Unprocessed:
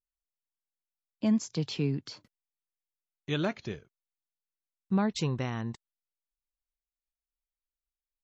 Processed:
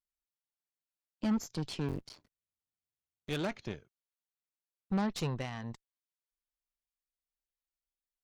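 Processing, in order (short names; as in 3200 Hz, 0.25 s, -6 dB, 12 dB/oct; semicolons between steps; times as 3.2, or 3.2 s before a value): 1.88–3.3 cycle switcher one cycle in 3, muted; added harmonics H 8 -19 dB, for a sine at -17.5 dBFS; gain -5 dB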